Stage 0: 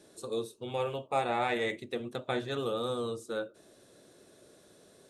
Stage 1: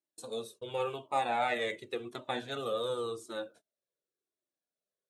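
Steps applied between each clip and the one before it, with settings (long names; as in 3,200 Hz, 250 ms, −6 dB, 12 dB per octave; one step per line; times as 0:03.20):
high-pass filter 270 Hz 6 dB per octave
noise gate −51 dBFS, range −36 dB
flanger whose copies keep moving one way falling 0.91 Hz
level +4 dB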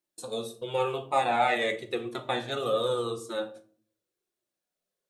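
rectangular room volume 440 cubic metres, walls furnished, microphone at 0.92 metres
level +5 dB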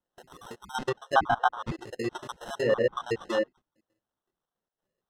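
time-frequency cells dropped at random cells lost 80%
decimation without filtering 19×
treble cut that deepens with the level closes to 1,700 Hz, closed at −28 dBFS
level +6.5 dB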